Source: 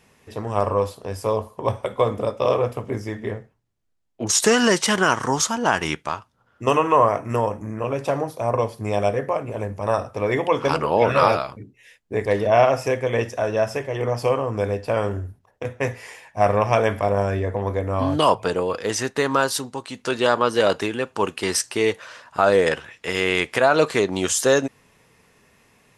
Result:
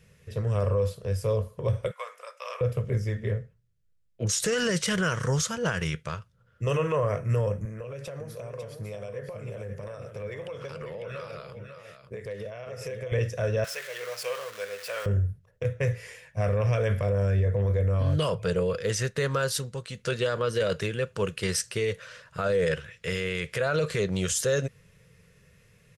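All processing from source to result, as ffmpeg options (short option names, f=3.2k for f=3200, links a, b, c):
-filter_complex "[0:a]asettb=1/sr,asplit=3[a][b][c];[a]atrim=end=1.914[d];[b]atrim=start=1.91:end=2.61,asetpts=PTS-STARTPTS,afade=t=in:d=0.004:c=qsin,afade=t=out:st=0.696:d=0.004:c=qsin,highpass=f=930:w=0.5412,highpass=f=930:w=1.3066,equalizer=f=3.5k:w=6.7:g=-12[e];[c]atrim=start=2.606[f];[d][e]acrossfade=d=0.004:c1=hsin:c2=qsin[g];[g][f]acrossfade=d=0.004:c1=qsin:c2=hsin,asettb=1/sr,asplit=3[h][i][j];[h]atrim=end=7.654[k];[i]atrim=start=7.65:end=13.12,asetpts=PTS-STARTPTS,afade=t=in:d=0.004:c=qsin,afade=t=out:st=5.466:d=0.004:c=qsin,highpass=f=270:p=1,acompressor=threshold=-30dB:ratio=8:attack=3.2:release=140:knee=1:detection=peak,aecho=1:1:548:0.398,atrim=end_sample=241227[l];[j]atrim=start=13.116[m];[k][l]acrossfade=d=0.004:c1=hsin:c2=qsin[n];[n][m]acrossfade=d=0.004:c1=qsin:c2=hsin,asettb=1/sr,asplit=3[o][p][q];[o]atrim=end=13.644[r];[p]atrim=start=13.64:end=15.06,asetpts=PTS-STARTPTS,afade=t=in:d=0.004:c=qsin,afade=t=out:st=1.416:d=0.004:c=qsin,aeval=exprs='val(0)+0.5*0.0398*sgn(val(0))':c=same,highpass=1k[s];[q]atrim=start=15.056[t];[r][s]acrossfade=d=0.004:c1=hsin:c2=qsin[u];[u][t]acrossfade=d=0.004:c1=qsin:c2=hsin,firequalizer=gain_entry='entry(170,0);entry(260,-21);entry(500,-5);entry(790,-24);entry(1400,-10)':delay=0.05:min_phase=1,alimiter=limit=-23dB:level=0:latency=1:release=25,volume=5.5dB"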